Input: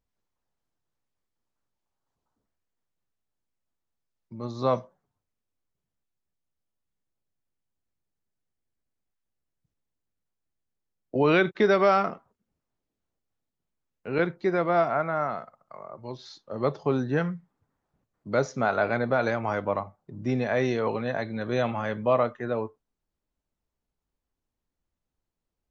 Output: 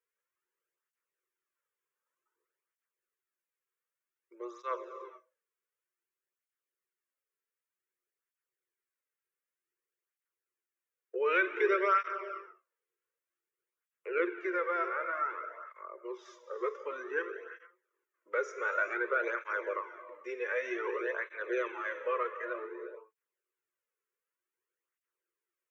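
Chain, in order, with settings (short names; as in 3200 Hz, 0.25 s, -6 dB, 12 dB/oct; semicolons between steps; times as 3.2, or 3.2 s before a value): in parallel at +2 dB: compressor, threshold -33 dBFS, peak gain reduction 16 dB; on the sum: rippled Chebyshev high-pass 350 Hz, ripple 3 dB; fixed phaser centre 1800 Hz, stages 4; non-linear reverb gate 0.46 s flat, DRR 8 dB; tape flanging out of phase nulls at 0.54 Hz, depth 3.5 ms; gain -1 dB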